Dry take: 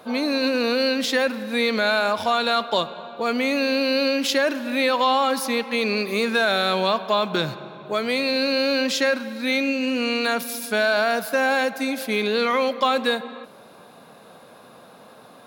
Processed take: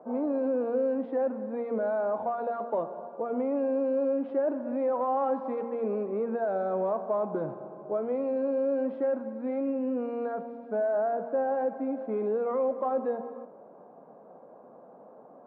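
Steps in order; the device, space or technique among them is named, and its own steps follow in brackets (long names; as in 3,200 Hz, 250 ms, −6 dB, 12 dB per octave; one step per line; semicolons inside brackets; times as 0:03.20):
overdriven synthesiser ladder filter (soft clipping −18 dBFS, distortion −13 dB; transistor ladder low-pass 960 Hz, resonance 25%)
hum removal 117.2 Hz, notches 37
0:05.17–0:05.70: parametric band 4,000 Hz +5.5 dB 2.9 octaves
high-pass filter 210 Hz 12 dB per octave
level +2.5 dB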